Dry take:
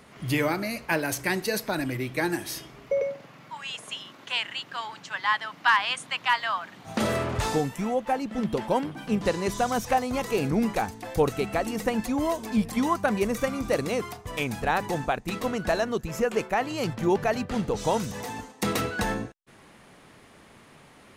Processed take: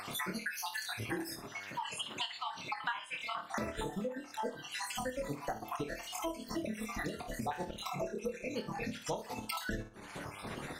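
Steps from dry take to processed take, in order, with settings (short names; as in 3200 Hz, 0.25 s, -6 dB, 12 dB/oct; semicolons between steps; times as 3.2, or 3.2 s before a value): random spectral dropouts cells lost 71%; flutter echo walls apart 4.7 m, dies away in 0.52 s; granular stretch 0.51×, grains 0.121 s; buzz 100 Hz, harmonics 17, -67 dBFS 0 dB/oct; compressor 6:1, threshold -50 dBFS, peak gain reduction 30.5 dB; gain +12.5 dB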